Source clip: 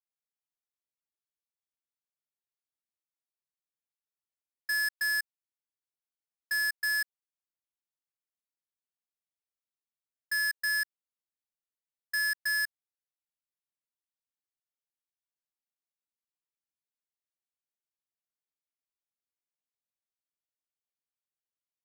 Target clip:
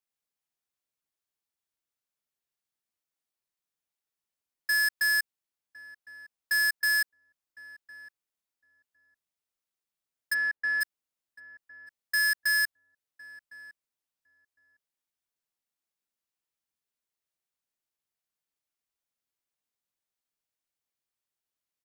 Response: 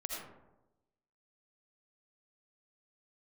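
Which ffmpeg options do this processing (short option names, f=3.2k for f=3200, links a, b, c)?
-filter_complex "[0:a]asplit=3[a][b][c];[a]afade=t=out:st=10.33:d=0.02[d];[b]lowpass=1.9k,afade=t=in:st=10.33:d=0.02,afade=t=out:st=10.8:d=0.02[e];[c]afade=t=in:st=10.8:d=0.02[f];[d][e][f]amix=inputs=3:normalize=0,asplit=2[g][h];[h]adelay=1058,lowpass=f=880:p=1,volume=-15dB,asplit=2[i][j];[j]adelay=1058,lowpass=f=880:p=1,volume=0.18[k];[i][k]amix=inputs=2:normalize=0[l];[g][l]amix=inputs=2:normalize=0,volume=4dB"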